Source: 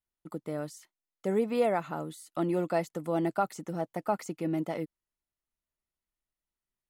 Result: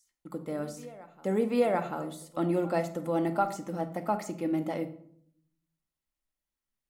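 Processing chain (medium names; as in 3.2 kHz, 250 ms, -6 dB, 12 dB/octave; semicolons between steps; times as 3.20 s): reverse echo 740 ms -20.5 dB; on a send at -7 dB: reverberation RT60 0.65 s, pre-delay 4 ms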